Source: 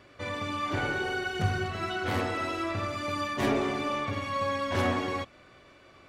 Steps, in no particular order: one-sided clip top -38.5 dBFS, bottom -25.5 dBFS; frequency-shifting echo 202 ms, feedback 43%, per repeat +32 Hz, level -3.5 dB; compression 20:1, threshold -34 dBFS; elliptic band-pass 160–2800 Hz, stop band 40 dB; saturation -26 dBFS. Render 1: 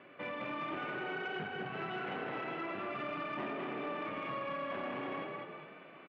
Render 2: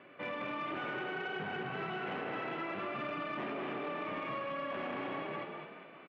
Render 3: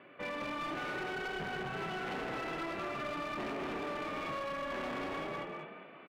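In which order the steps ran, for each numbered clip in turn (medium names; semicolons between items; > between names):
compression > frequency-shifting echo > one-sided clip > elliptic band-pass > saturation; one-sided clip > frequency-shifting echo > elliptic band-pass > compression > saturation; saturation > frequency-shifting echo > elliptic band-pass > one-sided clip > compression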